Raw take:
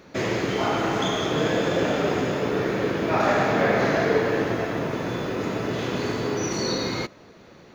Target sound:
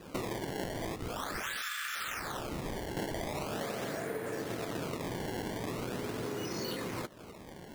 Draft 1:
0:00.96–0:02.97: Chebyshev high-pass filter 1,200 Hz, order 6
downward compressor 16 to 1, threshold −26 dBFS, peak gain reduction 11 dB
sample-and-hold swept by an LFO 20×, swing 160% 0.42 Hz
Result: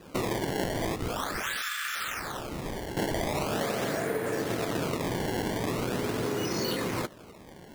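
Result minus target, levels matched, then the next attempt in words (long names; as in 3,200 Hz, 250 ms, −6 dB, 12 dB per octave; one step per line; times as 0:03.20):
downward compressor: peak gain reduction −7 dB
0:00.96–0:02.97: Chebyshev high-pass filter 1,200 Hz, order 6
downward compressor 16 to 1, threshold −33.5 dBFS, peak gain reduction 18 dB
sample-and-hold swept by an LFO 20×, swing 160% 0.42 Hz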